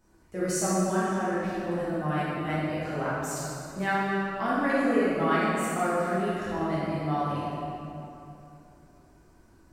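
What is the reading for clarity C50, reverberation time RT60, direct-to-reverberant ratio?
−4.5 dB, 2.8 s, −10.0 dB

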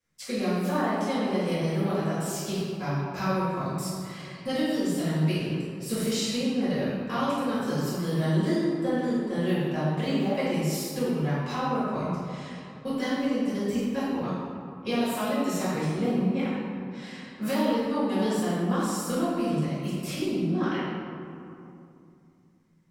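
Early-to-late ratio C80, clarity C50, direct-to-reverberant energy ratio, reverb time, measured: −0.5 dB, −3.0 dB, −12.0 dB, 2.7 s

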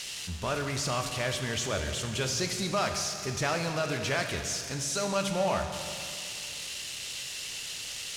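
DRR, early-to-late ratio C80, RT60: 4.5 dB, 6.5 dB, 2.4 s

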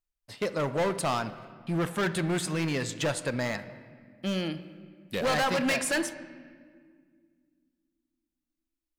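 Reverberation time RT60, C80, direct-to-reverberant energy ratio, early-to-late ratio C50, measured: 1.8 s, 14.5 dB, 11.5 dB, 13.0 dB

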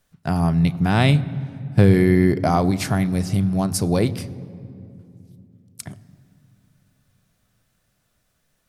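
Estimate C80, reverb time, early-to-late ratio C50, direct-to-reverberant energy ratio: 18.5 dB, 2.7 s, 17.5 dB, 12.0 dB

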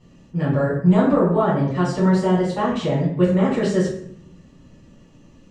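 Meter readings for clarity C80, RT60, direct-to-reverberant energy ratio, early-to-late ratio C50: 7.5 dB, 0.65 s, −9.5 dB, 3.5 dB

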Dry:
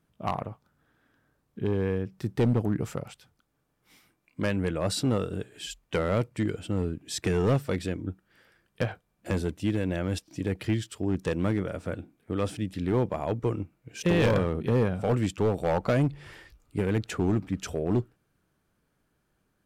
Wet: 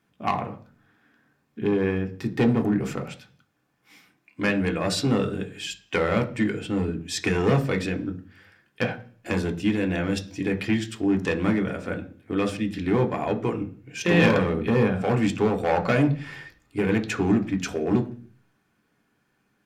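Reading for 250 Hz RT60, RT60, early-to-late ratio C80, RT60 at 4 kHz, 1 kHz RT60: 0.60 s, 0.45 s, 20.0 dB, 0.50 s, 0.40 s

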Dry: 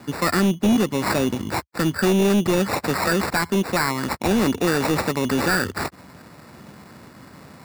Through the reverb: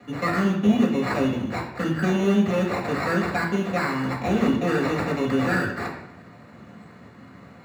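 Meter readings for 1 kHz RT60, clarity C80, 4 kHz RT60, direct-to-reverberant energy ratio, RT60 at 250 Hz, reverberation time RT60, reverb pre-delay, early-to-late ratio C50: 0.85 s, 9.0 dB, 0.65 s, −3.5 dB, 0.75 s, 0.85 s, 3 ms, 6.0 dB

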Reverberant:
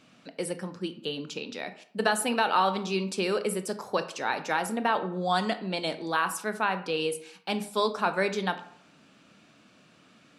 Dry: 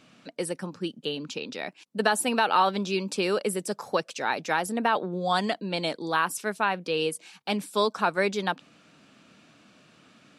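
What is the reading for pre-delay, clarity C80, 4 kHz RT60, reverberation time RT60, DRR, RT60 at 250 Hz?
19 ms, 16.0 dB, 0.40 s, 0.65 s, 9.5 dB, 0.60 s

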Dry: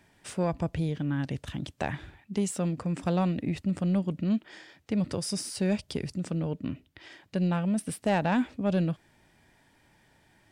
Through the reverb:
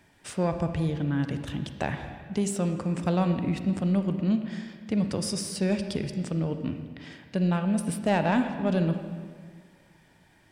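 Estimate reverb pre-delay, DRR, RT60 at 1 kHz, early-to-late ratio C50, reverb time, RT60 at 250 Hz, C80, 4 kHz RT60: 35 ms, 7.5 dB, 1.8 s, 8.0 dB, 1.9 s, 1.9 s, 9.0 dB, 1.5 s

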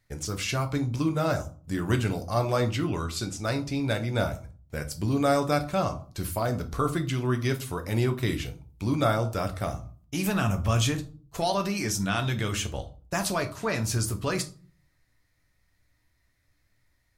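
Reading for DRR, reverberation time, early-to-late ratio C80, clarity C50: 5.5 dB, 0.40 s, 19.5 dB, 15.0 dB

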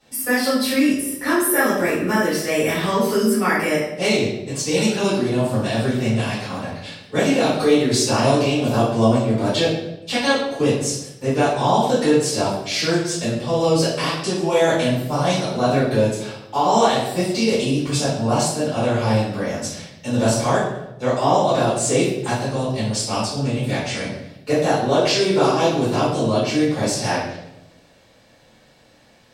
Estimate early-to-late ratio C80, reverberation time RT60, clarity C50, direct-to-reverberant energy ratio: 5.0 dB, 0.90 s, 1.0 dB, −13.0 dB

